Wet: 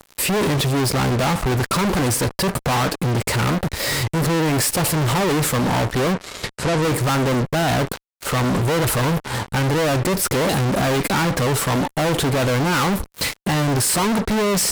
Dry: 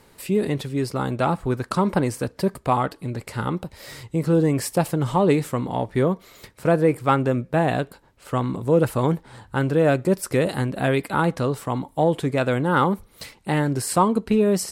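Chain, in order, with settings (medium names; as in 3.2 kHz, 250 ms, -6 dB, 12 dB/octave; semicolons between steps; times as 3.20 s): fuzz box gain 44 dB, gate -46 dBFS; 6.13–6.82 s: low-pass 8.4 kHz 12 dB/octave; trim -4.5 dB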